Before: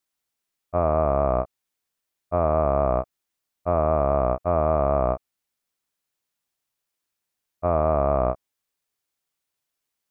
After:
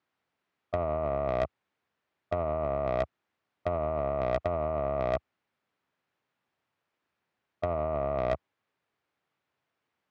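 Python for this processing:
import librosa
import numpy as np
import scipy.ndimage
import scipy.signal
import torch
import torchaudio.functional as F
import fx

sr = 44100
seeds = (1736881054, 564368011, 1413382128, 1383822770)

y = scipy.signal.sosfilt(scipy.signal.butter(2, 2100.0, 'lowpass', fs=sr, output='sos'), x)
y = fx.over_compress(y, sr, threshold_db=-26.0, ratio=-0.5)
y = scipy.signal.sosfilt(scipy.signal.butter(4, 77.0, 'highpass', fs=sr, output='sos'), y)
y = 10.0 ** (-22.0 / 20.0) * np.tanh(y / 10.0 ** (-22.0 / 20.0))
y = F.gain(torch.from_numpy(y), 2.0).numpy()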